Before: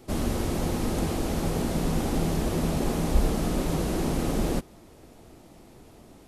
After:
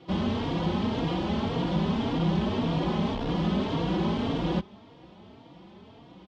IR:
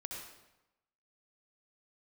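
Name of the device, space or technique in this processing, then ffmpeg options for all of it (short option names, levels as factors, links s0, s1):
barber-pole flanger into a guitar amplifier: -filter_complex "[0:a]asplit=2[s0][s1];[s1]adelay=3.7,afreqshift=1.8[s2];[s0][s2]amix=inputs=2:normalize=1,asoftclip=type=tanh:threshold=0.0891,highpass=78,equalizer=f=190:t=q:w=4:g=8,equalizer=f=970:t=q:w=4:g=7,equalizer=f=3200:t=q:w=4:g=9,lowpass=f=4400:w=0.5412,lowpass=f=4400:w=1.3066,volume=1.33"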